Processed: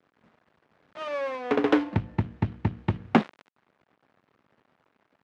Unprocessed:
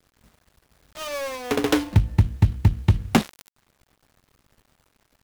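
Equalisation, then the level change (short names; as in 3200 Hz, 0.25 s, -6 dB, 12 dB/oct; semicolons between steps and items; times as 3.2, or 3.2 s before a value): BPF 190–2100 Hz; 0.0 dB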